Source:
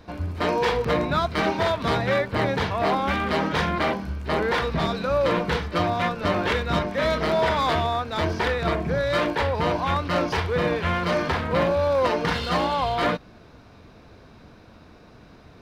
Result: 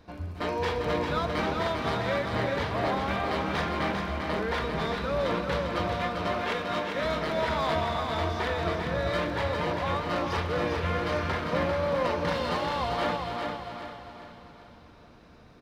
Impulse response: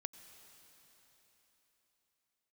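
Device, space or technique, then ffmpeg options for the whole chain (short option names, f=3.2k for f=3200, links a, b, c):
cave: -filter_complex "[0:a]asettb=1/sr,asplit=3[a][b][c];[a]atrim=end=6.154[d];[b]atrim=start=6.15:end=6.95,asetpts=PTS-STARTPTS,afade=t=in:d=0.004:c=qsin,afade=t=out:st=0.796:d=0.004:c=qsin,highpass=260[e];[c]atrim=start=6.946[f];[d][e]acrossfade=d=0.004:c1=hsin:c2=qsin[g];[g][f]acrossfade=d=0.004:c1=qsin:c2=hsin,aecho=1:1:271:0.282[h];[1:a]atrim=start_sample=2205[i];[h][i]afir=irnorm=-1:irlink=0,aecho=1:1:397|794|1191|1588|1985:0.562|0.225|0.09|0.036|0.0144,volume=-3.5dB"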